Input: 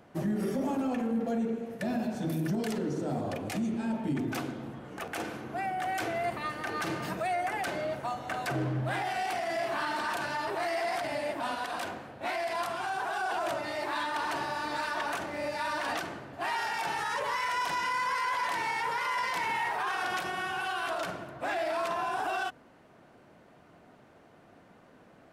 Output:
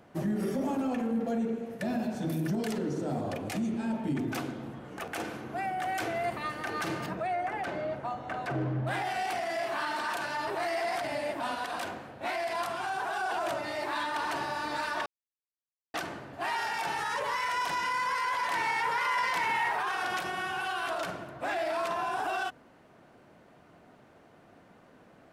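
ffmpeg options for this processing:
ffmpeg -i in.wav -filter_complex "[0:a]asettb=1/sr,asplit=3[link_01][link_02][link_03];[link_01]atrim=end=7.064[link_04];[link_02]atrim=start=7.06:end=8.87,asetpts=PTS-STARTPTS,afade=type=in:duration=0.004:curve=qsin,afade=type=out:start_time=1.806:duration=0.004:curve=qsin,lowpass=frequency=1800:poles=1[link_05];[link_03]atrim=start=8.866[link_06];[link_04][link_05]acrossfade=duration=0.004:curve1=hsin:curve2=qsin[link_07];[link_07][link_06]acrossfade=duration=0.004:curve1=qsin:curve2=hsin,asettb=1/sr,asplit=3[link_08][link_09][link_10];[link_08]atrim=end=9.474[link_11];[link_09]atrim=start=9.47:end=10.37,asetpts=PTS-STARTPTS,afade=type=in:duration=0.004:curve=qsin,afade=type=out:start_time=0.896:duration=0.004:curve=qsin,lowshelf=frequency=250:gain=-6.5[link_12];[link_10]atrim=start=10.366[link_13];[link_11][link_12]acrossfade=duration=0.004:curve1=hsin:curve2=qsin[link_14];[link_14][link_13]acrossfade=duration=0.004:curve1=qsin:curve2=hsin,asettb=1/sr,asplit=3[link_15][link_16][link_17];[link_15]atrim=end=18.524[link_18];[link_16]atrim=start=18.52:end=19.8,asetpts=PTS-STARTPTS,afade=type=in:duration=0.004:curve=qsin,afade=type=out:start_time=1.276:duration=0.004:curve=qsin,equalizer=frequency=1600:width=0.65:gain=3[link_19];[link_17]atrim=start=19.796[link_20];[link_18][link_19]acrossfade=duration=0.004:curve1=hsin:curve2=qsin[link_21];[link_21][link_20]acrossfade=duration=0.004:curve1=qsin:curve2=hsin,asplit=3[link_22][link_23][link_24];[link_22]atrim=end=15.06,asetpts=PTS-STARTPTS,afade=type=out:start_time=15.056:duration=0.004:curve=hsin[link_25];[link_23]atrim=start=15.06:end=15.94,asetpts=PTS-STARTPTS,volume=0[link_26];[link_24]atrim=start=15.94,asetpts=PTS-STARTPTS,afade=type=in:duration=0.004:curve=hsin[link_27];[link_25][link_26][link_27]concat=n=3:v=0:a=1" out.wav

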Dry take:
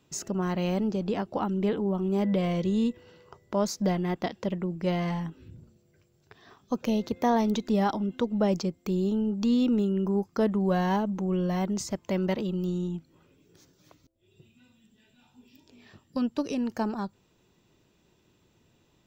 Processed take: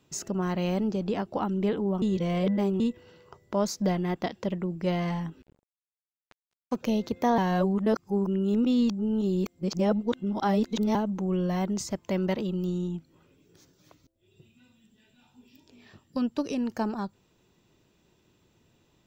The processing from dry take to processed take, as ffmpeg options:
ffmpeg -i in.wav -filter_complex "[0:a]asettb=1/sr,asplit=3[link_01][link_02][link_03];[link_01]atrim=end=5.424[link_04];[link_02]atrim=start=5.42:end=6.76,asetpts=PTS-STARTPTS,afade=type=in:duration=0.004:curve=qsin,afade=type=out:start_time=1.336:duration=0.004:curve=qsin,aeval=exprs='sgn(val(0))*max(abs(val(0))-0.0075,0)':channel_layout=same[link_05];[link_03]atrim=start=6.756[link_06];[link_04][link_05]acrossfade=duration=0.004:curve1=hsin:curve2=qsin[link_07];[link_07][link_06]acrossfade=duration=0.004:curve1=qsin:curve2=hsin,asplit=5[link_08][link_09][link_10][link_11][link_12];[link_08]atrim=end=2.022[link_13];[link_09]atrim=start=2.018:end=2.802,asetpts=PTS-STARTPTS,areverse[link_14];[link_10]atrim=start=2.798:end=7.382[link_15];[link_11]atrim=start=7.378:end=10.952,asetpts=PTS-STARTPTS,areverse[link_16];[link_12]atrim=start=10.948[link_17];[link_13][link_14]acrossfade=duration=0.004:curve1=hsin:curve2=hsin[link_18];[link_18][link_15]acrossfade=duration=0.004:curve1=hsin:curve2=hsin[link_19];[link_19][link_16]acrossfade=duration=0.004:curve1=hsin:curve2=hsin[link_20];[link_20][link_17]acrossfade=duration=0.004:curve1=hsin:curve2=hsin" out.wav

